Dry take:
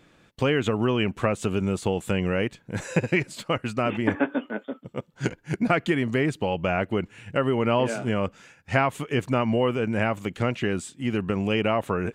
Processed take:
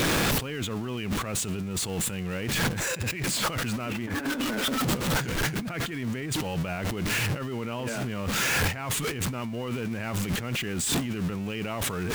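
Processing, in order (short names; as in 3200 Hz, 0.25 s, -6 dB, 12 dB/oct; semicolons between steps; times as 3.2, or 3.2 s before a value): zero-crossing step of -30.5 dBFS; dynamic EQ 570 Hz, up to -6 dB, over -35 dBFS, Q 0.73; negative-ratio compressor -35 dBFS, ratio -1; limiter -30 dBFS, peak gain reduction 10.5 dB; on a send: reverb RT60 0.55 s, pre-delay 3 ms, DRR 22 dB; on the sum: gain +7 dB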